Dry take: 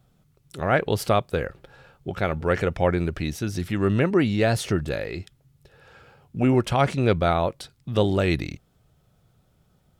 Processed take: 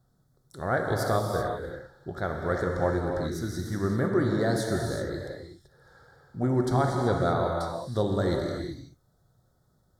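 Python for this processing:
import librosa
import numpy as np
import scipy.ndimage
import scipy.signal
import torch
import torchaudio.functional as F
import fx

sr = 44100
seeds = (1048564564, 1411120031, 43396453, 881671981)

y = scipy.signal.sosfilt(scipy.signal.cheby1(2, 1.0, [1700.0, 4000.0], 'bandstop', fs=sr, output='sos'), x)
y = fx.rev_gated(y, sr, seeds[0], gate_ms=410, shape='flat', drr_db=0.5)
y = y * librosa.db_to_amplitude(-5.5)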